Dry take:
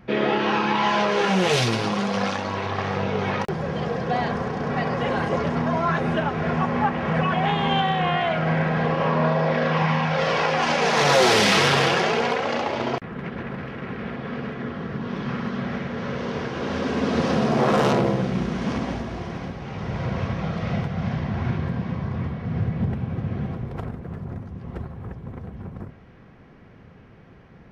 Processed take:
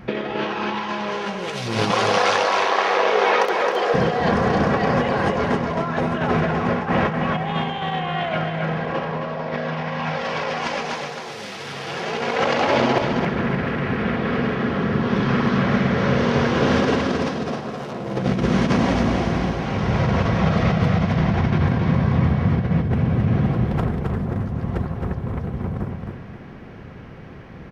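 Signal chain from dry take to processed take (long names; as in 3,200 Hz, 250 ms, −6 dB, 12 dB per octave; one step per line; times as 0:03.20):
0:01.91–0:03.94: high-pass filter 390 Hz 24 dB per octave
compressor whose output falls as the input rises −26 dBFS, ratio −0.5
repeating echo 267 ms, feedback 30%, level −5 dB
level +5 dB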